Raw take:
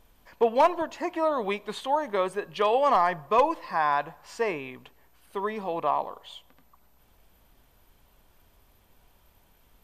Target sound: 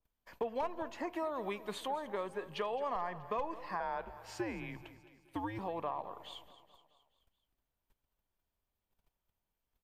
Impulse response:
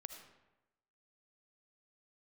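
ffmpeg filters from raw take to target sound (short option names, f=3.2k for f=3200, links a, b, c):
-filter_complex "[0:a]asettb=1/sr,asplit=3[a][b][c];[a]atrim=end=1.134[d];[b]atrim=start=1.13:end=1.88,asetpts=PTS-STARTPTS,afade=t=in:d=0.004:c=qsin,afade=t=out:st=0.746:d=0.004:c=qsin,highshelf=f=7.4k:g=11.5[e];[c]atrim=start=1.876[f];[d][e]acrossfade=d=0.004:c1=hsin:c2=qsin[g];[g][f]acrossfade=d=0.004:c1=qsin:c2=hsin,agate=range=-24dB:threshold=-54dB:ratio=16:detection=peak,acrossover=split=120[h][i];[i]acompressor=threshold=-33dB:ratio=4[j];[h][j]amix=inputs=2:normalize=0,asettb=1/sr,asplit=3[k][l][m];[k]atrim=end=3.804[n];[l]atrim=start=3.8:end=5.59,asetpts=PTS-STARTPTS,afade=t=in:d=0.004:c=qsin,afade=t=out:st=1.786:d=0.004:c=qsin,afreqshift=-110[o];[m]atrim=start=5.586[p];[n][o]acrossfade=d=0.004:c1=hsin:c2=qsin[q];[q][p]acrossfade=d=0.004:c1=qsin:c2=hsin,aecho=1:1:214|428|642|856|1070:0.158|0.084|0.0445|0.0236|0.0125,adynamicequalizer=threshold=0.002:dfrequency=3000:dqfactor=0.7:tfrequency=3000:tqfactor=0.7:attack=5:release=100:ratio=0.375:range=3:mode=cutabove:tftype=highshelf,volume=-3dB"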